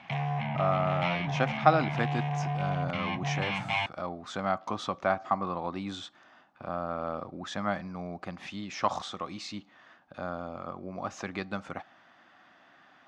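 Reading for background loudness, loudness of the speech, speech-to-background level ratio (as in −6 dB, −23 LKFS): −32.0 LKFS, −33.5 LKFS, −1.5 dB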